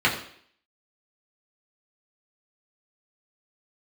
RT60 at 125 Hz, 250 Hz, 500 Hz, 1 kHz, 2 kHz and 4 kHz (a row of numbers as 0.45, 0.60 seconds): 0.50, 0.60, 0.60, 0.60, 0.60, 0.60 seconds